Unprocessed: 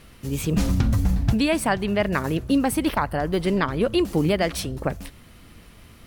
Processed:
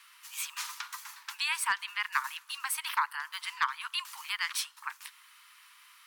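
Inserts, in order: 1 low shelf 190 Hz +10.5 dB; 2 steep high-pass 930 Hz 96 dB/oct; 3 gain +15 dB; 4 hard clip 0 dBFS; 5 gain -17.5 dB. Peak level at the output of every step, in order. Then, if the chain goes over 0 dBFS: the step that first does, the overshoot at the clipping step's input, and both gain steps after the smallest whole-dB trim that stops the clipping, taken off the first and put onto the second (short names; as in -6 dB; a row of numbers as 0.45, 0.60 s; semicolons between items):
-2.5, -11.5, +3.5, 0.0, -17.5 dBFS; step 3, 3.5 dB; step 3 +11 dB, step 5 -13.5 dB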